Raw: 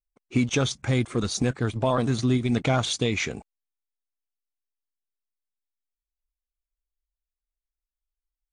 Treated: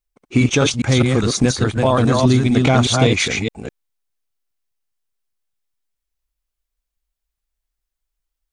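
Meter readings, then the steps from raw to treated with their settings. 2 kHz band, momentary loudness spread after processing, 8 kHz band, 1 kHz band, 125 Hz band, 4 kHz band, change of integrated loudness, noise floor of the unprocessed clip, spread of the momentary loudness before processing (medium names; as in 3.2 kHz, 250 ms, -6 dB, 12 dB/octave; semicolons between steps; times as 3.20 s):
+9.5 dB, 8 LU, +9.5 dB, +9.5 dB, +9.5 dB, +9.5 dB, +9.0 dB, under -85 dBFS, 5 LU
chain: chunks repeated in reverse 205 ms, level -2.5 dB; trim +7.5 dB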